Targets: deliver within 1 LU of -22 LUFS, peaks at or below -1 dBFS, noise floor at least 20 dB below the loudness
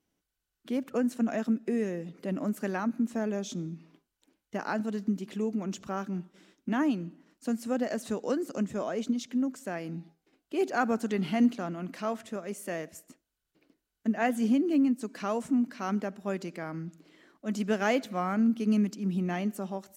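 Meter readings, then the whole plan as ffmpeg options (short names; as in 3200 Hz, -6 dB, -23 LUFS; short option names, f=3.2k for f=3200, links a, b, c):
loudness -31.0 LUFS; peak -12.0 dBFS; loudness target -22.0 LUFS
-> -af "volume=9dB"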